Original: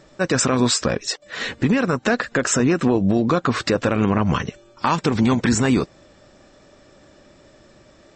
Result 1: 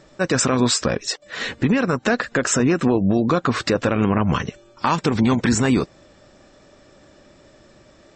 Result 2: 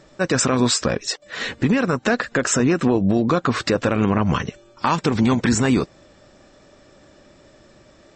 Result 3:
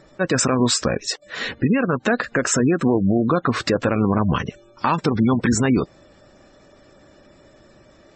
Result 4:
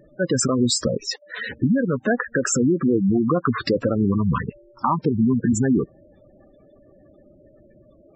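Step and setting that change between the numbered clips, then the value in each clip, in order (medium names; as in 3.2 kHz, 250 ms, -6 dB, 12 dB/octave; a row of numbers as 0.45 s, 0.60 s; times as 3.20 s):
spectral gate, under each frame's peak: -45 dB, -60 dB, -25 dB, -10 dB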